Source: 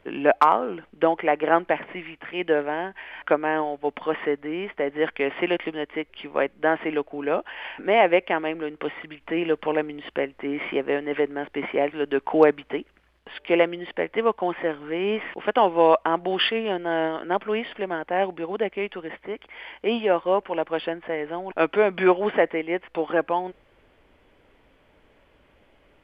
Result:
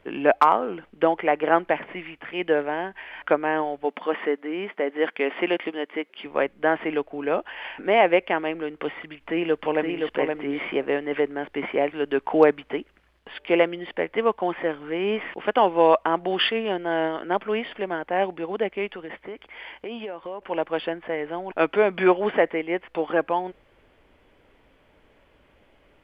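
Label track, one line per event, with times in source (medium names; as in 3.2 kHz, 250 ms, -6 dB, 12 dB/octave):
3.850000	6.260000	brick-wall FIR high-pass 170 Hz
9.110000	10.080000	echo throw 520 ms, feedback 10%, level -4 dB
18.930000	20.420000	compression, threshold -31 dBFS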